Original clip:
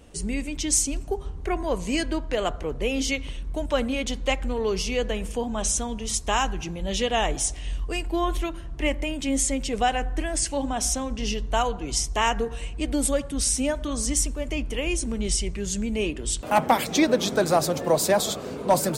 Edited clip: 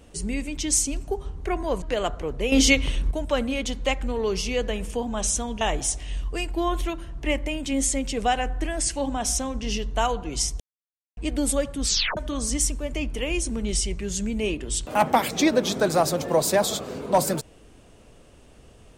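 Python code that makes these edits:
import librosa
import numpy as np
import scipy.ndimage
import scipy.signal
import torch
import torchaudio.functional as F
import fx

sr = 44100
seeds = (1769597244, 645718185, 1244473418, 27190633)

y = fx.edit(x, sr, fx.cut(start_s=1.82, length_s=0.41),
    fx.clip_gain(start_s=2.93, length_s=0.59, db=8.5),
    fx.cut(start_s=6.02, length_s=1.15),
    fx.silence(start_s=12.16, length_s=0.57),
    fx.tape_stop(start_s=13.4, length_s=0.33), tone=tone)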